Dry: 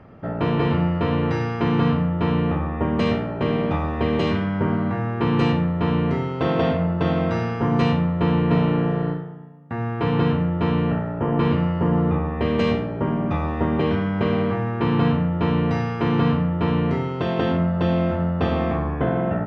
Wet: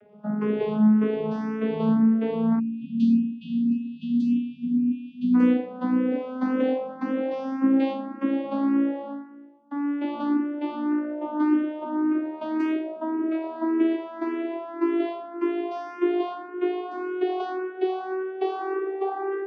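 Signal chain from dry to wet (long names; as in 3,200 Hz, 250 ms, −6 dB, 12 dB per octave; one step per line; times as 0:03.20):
vocoder with a gliding carrier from G#3, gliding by +11 semitones
time-frequency box erased 0:02.59–0:05.35, 290–2,400 Hz
frequency shifter mixed with the dry sound +1.8 Hz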